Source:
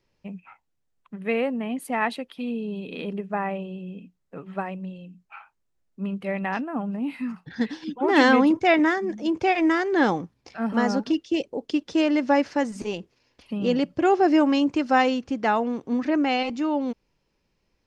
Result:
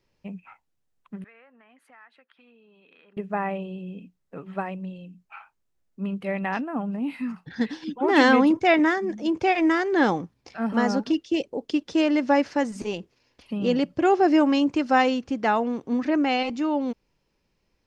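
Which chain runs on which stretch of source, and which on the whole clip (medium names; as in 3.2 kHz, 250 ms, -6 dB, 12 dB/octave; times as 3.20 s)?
1.24–3.17 s: band-pass filter 1.5 kHz, Q 3 + compression 3:1, threshold -54 dBFS
whole clip: none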